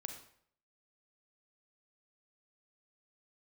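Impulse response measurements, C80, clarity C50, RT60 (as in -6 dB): 9.5 dB, 6.5 dB, 0.60 s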